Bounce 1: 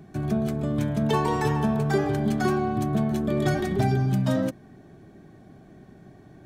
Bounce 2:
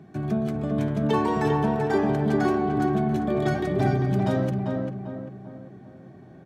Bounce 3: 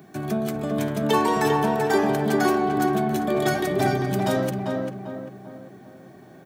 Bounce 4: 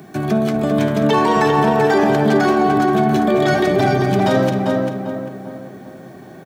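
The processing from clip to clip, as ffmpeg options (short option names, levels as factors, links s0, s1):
-filter_complex "[0:a]highpass=100,highshelf=f=5300:g=-10.5,asplit=2[s0][s1];[s1]adelay=395,lowpass=f=1900:p=1,volume=0.708,asplit=2[s2][s3];[s3]adelay=395,lowpass=f=1900:p=1,volume=0.44,asplit=2[s4][s5];[s5]adelay=395,lowpass=f=1900:p=1,volume=0.44,asplit=2[s6][s7];[s7]adelay=395,lowpass=f=1900:p=1,volume=0.44,asplit=2[s8][s9];[s9]adelay=395,lowpass=f=1900:p=1,volume=0.44,asplit=2[s10][s11];[s11]adelay=395,lowpass=f=1900:p=1,volume=0.44[s12];[s0][s2][s4][s6][s8][s10][s12]amix=inputs=7:normalize=0"
-af "aemphasis=mode=production:type=bsi,volume=1.68"
-filter_complex "[0:a]acrossover=split=5800[s0][s1];[s1]acompressor=threshold=0.00251:ratio=4:attack=1:release=60[s2];[s0][s2]amix=inputs=2:normalize=0,alimiter=limit=0.168:level=0:latency=1:release=13,aecho=1:1:212:0.237,volume=2.66"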